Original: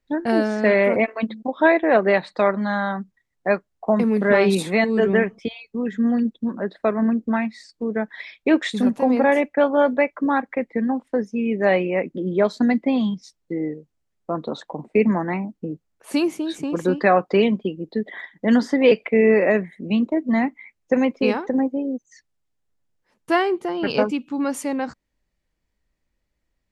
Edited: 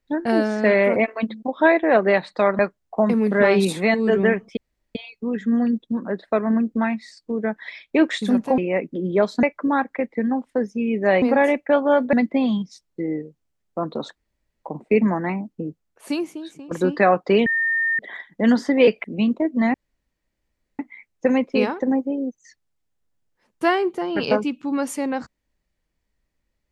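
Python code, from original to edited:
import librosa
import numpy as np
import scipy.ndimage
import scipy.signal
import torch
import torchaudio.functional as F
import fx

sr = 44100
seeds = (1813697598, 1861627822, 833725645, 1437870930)

y = fx.edit(x, sr, fx.cut(start_s=2.59, length_s=0.9),
    fx.insert_room_tone(at_s=5.47, length_s=0.38),
    fx.swap(start_s=9.1, length_s=0.91, other_s=11.8, other_length_s=0.85),
    fx.insert_room_tone(at_s=14.68, length_s=0.48),
    fx.fade_out_to(start_s=15.72, length_s=1.03, floor_db=-16.0),
    fx.bleep(start_s=17.5, length_s=0.53, hz=1820.0, db=-18.0),
    fx.cut(start_s=19.08, length_s=0.68),
    fx.insert_room_tone(at_s=20.46, length_s=1.05), tone=tone)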